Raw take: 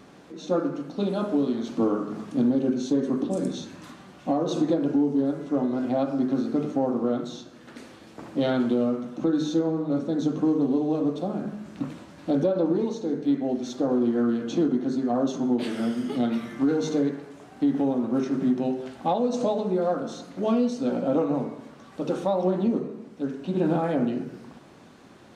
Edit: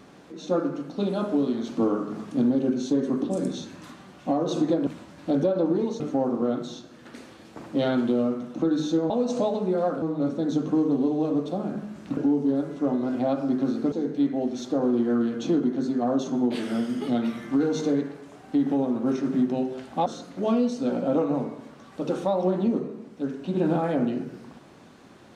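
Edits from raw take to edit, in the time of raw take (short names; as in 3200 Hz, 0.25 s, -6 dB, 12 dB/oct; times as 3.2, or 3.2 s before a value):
4.87–6.62 swap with 11.87–13
19.14–20.06 move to 9.72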